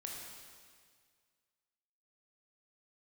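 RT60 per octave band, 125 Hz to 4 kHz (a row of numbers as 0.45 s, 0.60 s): 2.0 s, 1.9 s, 1.9 s, 1.8 s, 1.8 s, 1.8 s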